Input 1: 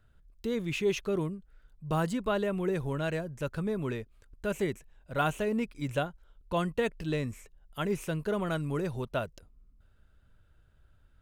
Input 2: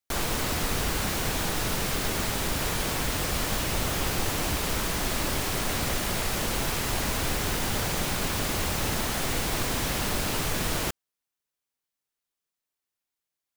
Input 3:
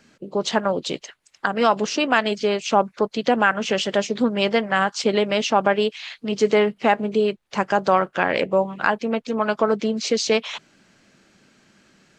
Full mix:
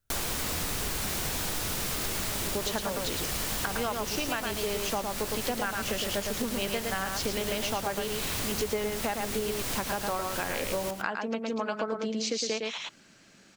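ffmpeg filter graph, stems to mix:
-filter_complex "[0:a]volume=-15dB[a];[1:a]flanger=delay=9:depth=6.8:regen=80:speed=1.3:shape=triangular,volume=2.5dB,asplit=2[b][c];[c]volume=-13.5dB[d];[2:a]adelay=2200,volume=-3.5dB,asplit=2[e][f];[f]volume=-4.5dB[g];[d][g]amix=inputs=2:normalize=0,aecho=0:1:110:1[h];[a][b][e][h]amix=inputs=4:normalize=0,highshelf=f=3.6k:g=6.5,acompressor=threshold=-28dB:ratio=6"

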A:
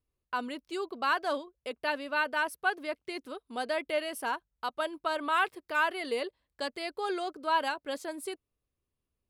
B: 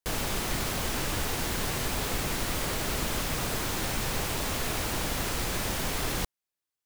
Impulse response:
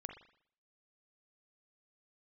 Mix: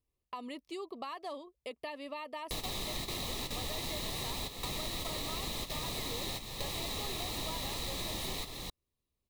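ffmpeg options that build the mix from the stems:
-filter_complex "[0:a]acompressor=threshold=-33dB:ratio=4,volume=-1.5dB,asplit=2[a][b];[1:a]equalizer=f=3.9k:w=5.8:g=13.5,adelay=2450,volume=0dB[c];[b]apad=whole_len=410331[d];[c][d]sidechaingate=range=-10dB:threshold=-53dB:ratio=16:detection=peak[e];[a][e]amix=inputs=2:normalize=0,asuperstop=centerf=1500:order=4:qfactor=3.3,acompressor=threshold=-39dB:ratio=2.5"

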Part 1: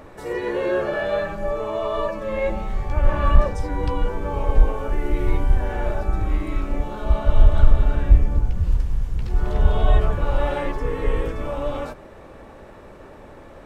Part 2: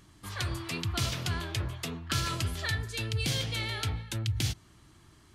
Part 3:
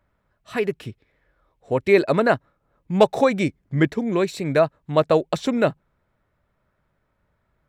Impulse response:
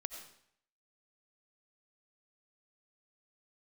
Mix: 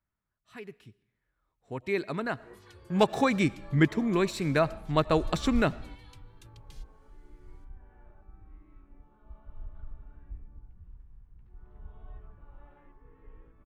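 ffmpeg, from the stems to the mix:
-filter_complex "[0:a]lowpass=1.7k,adelay=2200,volume=-19dB,asplit=2[a][b];[b]volume=-21.5dB[c];[1:a]acompressor=threshold=-40dB:ratio=3,asplit=2[d][e];[e]adelay=2.4,afreqshift=0.65[f];[d][f]amix=inputs=2:normalize=1,adelay=2300,volume=-12dB[g];[2:a]volume=-4dB,afade=t=in:st=1.1:d=0.54:silence=0.473151,afade=t=in:st=2.85:d=0.21:silence=0.375837,asplit=3[h][i][j];[i]volume=-11.5dB[k];[j]apad=whole_len=699028[l];[a][l]sidechaingate=range=-13dB:threshold=-55dB:ratio=16:detection=peak[m];[3:a]atrim=start_sample=2205[n];[c][k]amix=inputs=2:normalize=0[o];[o][n]afir=irnorm=-1:irlink=0[p];[m][g][h][p]amix=inputs=4:normalize=0,equalizer=f=550:t=o:w=0.71:g=-9"

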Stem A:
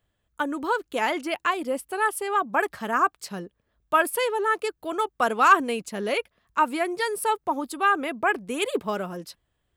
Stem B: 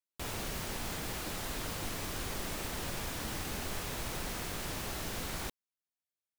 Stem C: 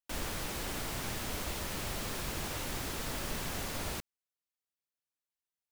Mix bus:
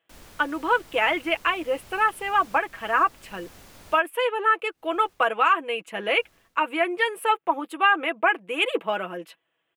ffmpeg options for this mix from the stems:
-filter_complex "[0:a]highpass=350,highshelf=f=3.7k:t=q:w=3:g=-10,aecho=1:1:6.1:0.59,volume=1.5dB[a];[1:a]asoftclip=type=tanh:threshold=-31.5dB,alimiter=level_in=19dB:limit=-24dB:level=0:latency=1,volume=-19dB,aeval=exprs='val(0)*pow(10,-35*(0.5-0.5*cos(2*PI*0.8*n/s))/20)':c=same,adelay=1300,volume=-12dB[b];[2:a]volume=-11dB[c];[a][b][c]amix=inputs=3:normalize=0,alimiter=limit=-9.5dB:level=0:latency=1:release=430"

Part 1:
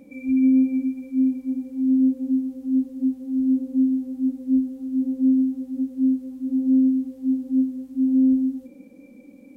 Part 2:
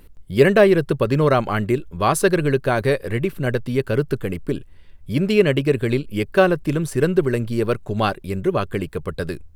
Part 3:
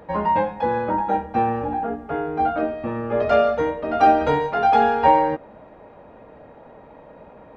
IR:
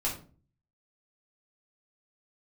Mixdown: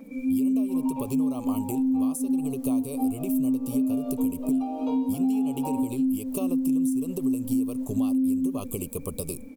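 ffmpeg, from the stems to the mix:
-filter_complex "[0:a]equalizer=f=1.1k:t=o:w=2.6:g=5.5,aecho=1:1:4.5:0.78,volume=-1dB[a];[1:a]agate=range=-33dB:threshold=-30dB:ratio=3:detection=peak,acompressor=threshold=-17dB:ratio=6,aexciter=amount=7:drive=8.2:freq=6.1k,volume=-3.5dB[b];[2:a]highpass=270,adelay=600,volume=-10.5dB[c];[b][c]amix=inputs=2:normalize=0,asuperstop=centerf=1700:order=8:qfactor=1.4,acompressor=threshold=-27dB:ratio=10,volume=0dB[d];[a][d]amix=inputs=2:normalize=0,acompressor=threshold=-23dB:ratio=5"

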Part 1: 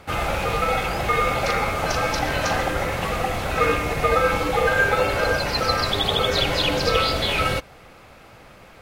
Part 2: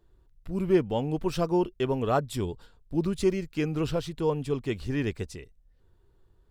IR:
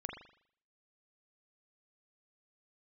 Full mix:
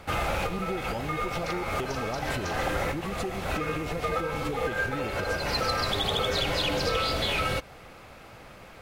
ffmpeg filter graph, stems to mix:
-filter_complex "[0:a]volume=-1dB[a];[1:a]acompressor=threshold=-33dB:ratio=12,volume=3dB,asplit=2[b][c];[c]apad=whole_len=388714[d];[a][d]sidechaincompress=threshold=-41dB:ratio=10:attack=31:release=206[e];[e][b]amix=inputs=2:normalize=0,asoftclip=type=tanh:threshold=-14.5dB,acompressor=threshold=-25dB:ratio=3"

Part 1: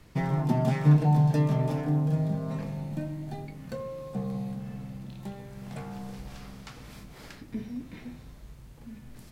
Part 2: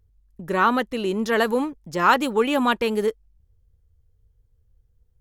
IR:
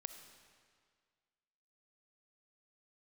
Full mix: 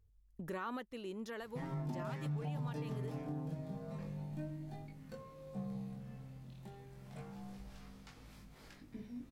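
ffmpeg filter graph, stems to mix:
-filter_complex "[0:a]flanger=delay=19:depth=3.9:speed=0.29,adelay=1400,volume=-8.5dB[a];[1:a]alimiter=limit=-16dB:level=0:latency=1:release=346,volume=-8.5dB,afade=t=out:st=0.69:d=0.32:silence=0.316228[b];[a][b]amix=inputs=2:normalize=0,alimiter=level_in=8.5dB:limit=-24dB:level=0:latency=1:release=165,volume=-8.5dB"

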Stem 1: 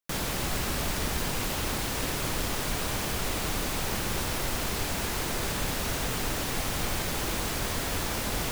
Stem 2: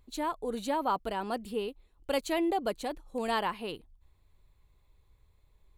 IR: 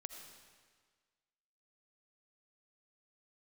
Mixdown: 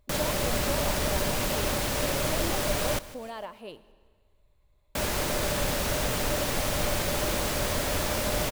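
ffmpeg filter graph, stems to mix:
-filter_complex "[0:a]bandreject=f=650:w=12,volume=1.5dB,asplit=3[a][b][c];[a]atrim=end=2.99,asetpts=PTS-STARTPTS,afade=t=out:st=2.986:d=0.004:c=hsin[d];[b]atrim=start=2.99:end=4.95,asetpts=PTS-STARTPTS,volume=0[e];[c]atrim=start=4.95,asetpts=PTS-STARTPTS,afade=t=in:d=0.004:c=hsin[f];[d][e][f]concat=n=3:v=0:a=1,asplit=2[g][h];[h]volume=-17.5dB[i];[1:a]alimiter=level_in=5.5dB:limit=-24dB:level=0:latency=1:release=437,volume=-5.5dB,volume=-4.5dB,asplit=2[j][k];[k]volume=-3.5dB[l];[2:a]atrim=start_sample=2205[m];[l][m]afir=irnorm=-1:irlink=0[n];[i]aecho=0:1:155|310|465|620|775|930|1085:1|0.48|0.23|0.111|0.0531|0.0255|0.0122[o];[g][j][n][o]amix=inputs=4:normalize=0,equalizer=f=600:w=6.8:g=13.5"

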